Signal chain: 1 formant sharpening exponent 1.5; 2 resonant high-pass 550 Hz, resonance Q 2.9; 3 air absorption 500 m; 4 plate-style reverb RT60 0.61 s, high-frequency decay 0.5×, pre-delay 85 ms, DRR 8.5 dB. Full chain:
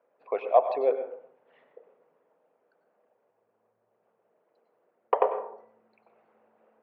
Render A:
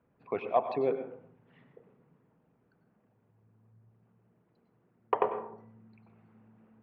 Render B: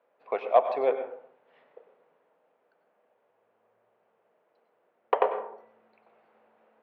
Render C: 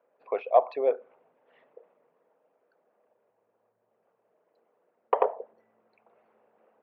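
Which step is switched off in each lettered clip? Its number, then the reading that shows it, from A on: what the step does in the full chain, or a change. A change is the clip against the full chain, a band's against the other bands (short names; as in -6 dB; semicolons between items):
2, 250 Hz band +10.0 dB; 1, 2 kHz band +5.0 dB; 4, momentary loudness spread change -2 LU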